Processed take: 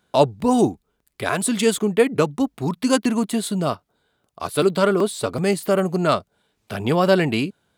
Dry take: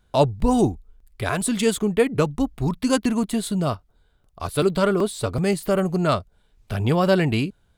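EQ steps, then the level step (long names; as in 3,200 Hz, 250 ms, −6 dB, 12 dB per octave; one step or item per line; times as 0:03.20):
high-pass filter 180 Hz 12 dB per octave
+2.5 dB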